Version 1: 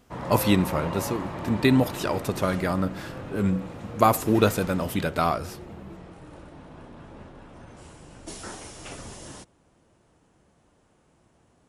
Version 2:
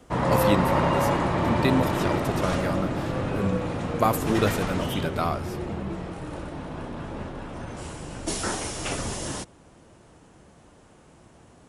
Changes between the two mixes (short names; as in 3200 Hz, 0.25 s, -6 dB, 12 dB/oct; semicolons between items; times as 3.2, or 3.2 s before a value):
speech -3.5 dB; background +10.0 dB